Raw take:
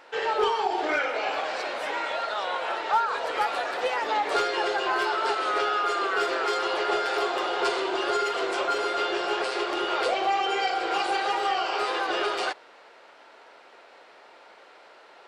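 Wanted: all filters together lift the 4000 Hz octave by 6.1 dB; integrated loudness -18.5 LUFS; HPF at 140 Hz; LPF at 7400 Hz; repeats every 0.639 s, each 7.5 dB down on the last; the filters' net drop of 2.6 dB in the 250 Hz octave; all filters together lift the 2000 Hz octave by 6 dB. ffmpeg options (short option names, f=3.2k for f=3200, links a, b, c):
-af "highpass=140,lowpass=7.4k,equalizer=f=250:t=o:g=-5,equalizer=f=2k:t=o:g=7,equalizer=f=4k:t=o:g=5.5,aecho=1:1:639|1278|1917|2556|3195:0.422|0.177|0.0744|0.0312|0.0131,volume=4dB"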